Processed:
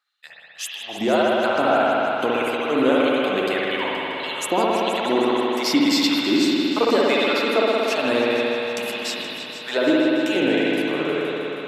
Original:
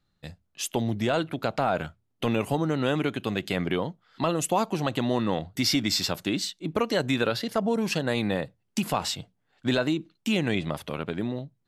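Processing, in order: LFO high-pass sine 1.7 Hz 270–3300 Hz; multi-head echo 0.158 s, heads all three, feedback 62%, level -16.5 dB; spring tank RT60 3.8 s, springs 59 ms, chirp 55 ms, DRR -5.5 dB

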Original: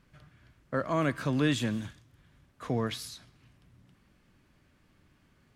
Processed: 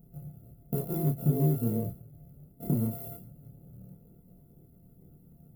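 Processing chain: sample sorter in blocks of 64 samples; compressor 6:1, threshold -33 dBFS, peak gain reduction 11 dB; chorus voices 6, 0.51 Hz, delay 27 ms, depth 1.6 ms; EQ curve 100 Hz 0 dB, 160 Hz +13 dB, 460 Hz +3 dB, 1500 Hz -23 dB, 2200 Hz -25 dB, 3800 Hz -22 dB, 6100 Hz -23 dB, 13000 Hz +10 dB; gain +6 dB

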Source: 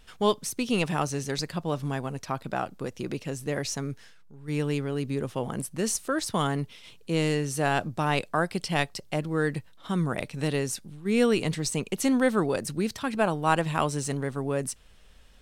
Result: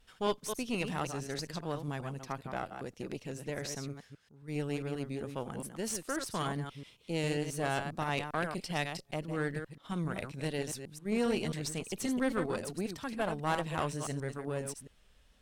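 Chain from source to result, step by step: reverse delay 0.134 s, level -7 dB; vibrato 2.3 Hz 34 cents; tube stage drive 17 dB, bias 0.7; gain -5 dB

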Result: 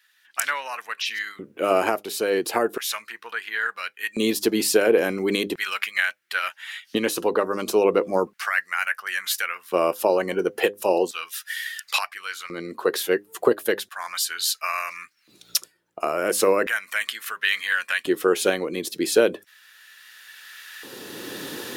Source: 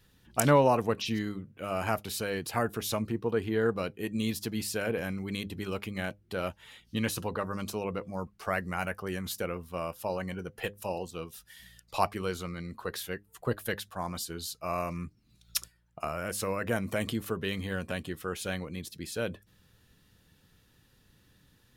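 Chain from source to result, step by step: recorder AGC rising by 10 dB/s; LFO high-pass square 0.36 Hz 360–1700 Hz; gain +2 dB

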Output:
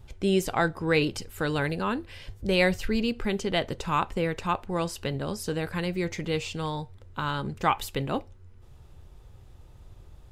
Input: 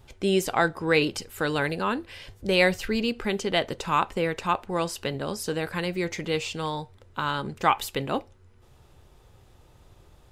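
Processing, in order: low shelf 150 Hz +11 dB; gain -3 dB

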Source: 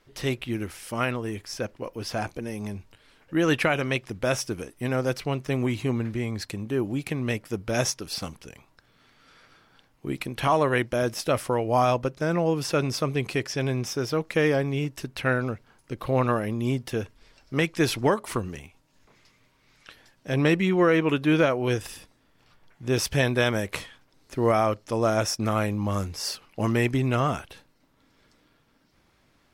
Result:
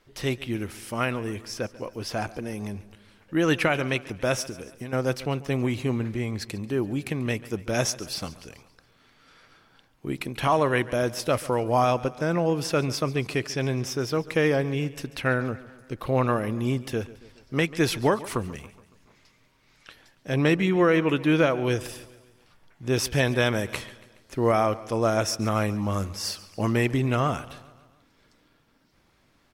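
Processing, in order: 4.49–4.93 compressor 10:1, threshold -33 dBFS, peak gain reduction 10.5 dB; on a send: feedback echo 0.14 s, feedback 54%, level -18.5 dB

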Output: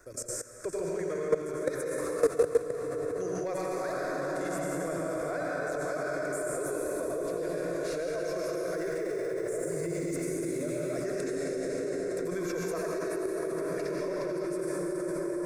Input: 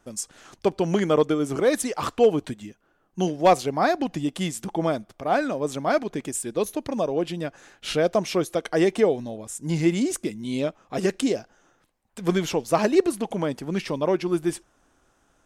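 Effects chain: 8.54–10.59 G.711 law mismatch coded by mu; reverb RT60 4.8 s, pre-delay 78 ms, DRR -6 dB; limiter -9 dBFS, peak gain reduction 6 dB; fixed phaser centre 830 Hz, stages 6; level quantiser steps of 17 dB; notch 1200 Hz, Q 11; three-band squash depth 40%; gain +1.5 dB

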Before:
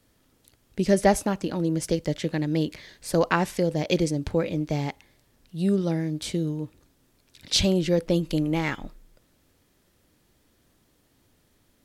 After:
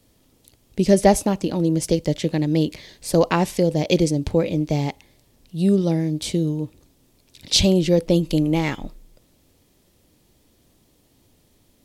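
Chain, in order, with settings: bell 1500 Hz -8.5 dB 0.88 oct; gain +5.5 dB

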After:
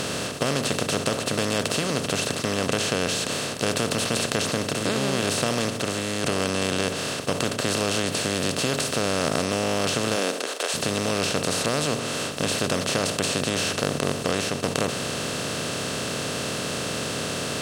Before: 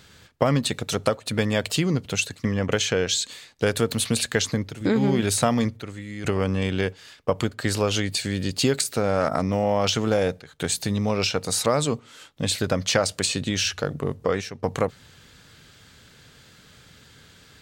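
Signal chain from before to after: per-bin compression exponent 0.2; 10.15–10.73 HPF 170 Hz -> 500 Hz 24 dB/oct; gain -11 dB

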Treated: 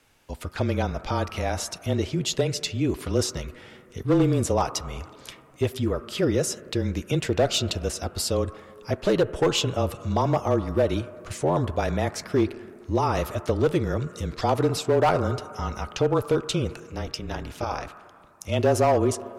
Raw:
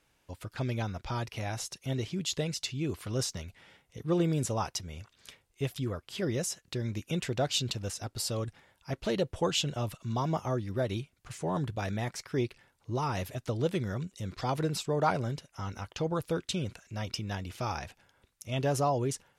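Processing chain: dynamic EQ 520 Hz, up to +7 dB, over -44 dBFS, Q 0.72; in parallel at -1 dB: compressor, threshold -38 dBFS, peak gain reduction 19 dB; 16.8–18.43 on the sum: AM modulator 220 Hz, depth 80%; on a send at -9.5 dB: speaker cabinet 310–2200 Hz, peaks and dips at 340 Hz -9 dB, 540 Hz -8 dB, 820 Hz -8 dB, 1300 Hz +6 dB, 2100 Hz -4 dB + reverb RT60 2.5 s, pre-delay 5 ms; on the sum: overloaded stage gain 18 dB; frequency shift -24 Hz; gain +3 dB

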